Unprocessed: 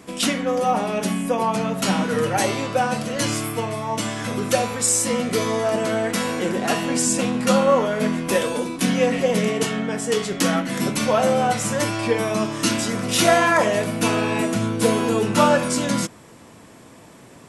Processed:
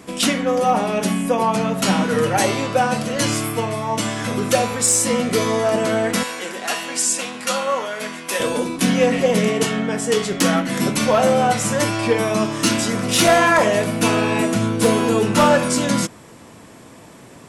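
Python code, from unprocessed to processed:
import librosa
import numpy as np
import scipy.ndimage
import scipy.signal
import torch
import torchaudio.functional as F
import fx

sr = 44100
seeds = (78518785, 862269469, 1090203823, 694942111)

y = fx.highpass(x, sr, hz=1400.0, slope=6, at=(6.23, 8.4))
y = np.clip(y, -10.0 ** (-11.0 / 20.0), 10.0 ** (-11.0 / 20.0))
y = y * 10.0 ** (3.0 / 20.0)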